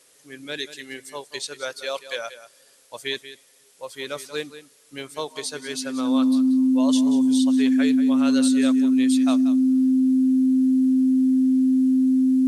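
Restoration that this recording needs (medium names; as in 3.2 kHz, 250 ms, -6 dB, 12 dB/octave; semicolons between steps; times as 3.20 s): band-stop 260 Hz, Q 30; expander -47 dBFS, range -21 dB; inverse comb 184 ms -13.5 dB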